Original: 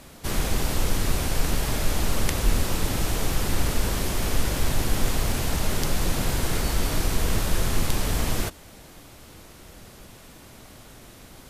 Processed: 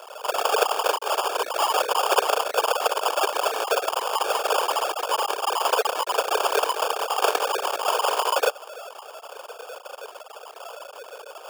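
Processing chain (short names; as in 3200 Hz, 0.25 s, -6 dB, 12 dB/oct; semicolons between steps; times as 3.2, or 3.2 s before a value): sine-wave speech; sample-rate reducer 2000 Hz, jitter 0%; elliptic high-pass 440 Hz, stop band 70 dB; gain -1 dB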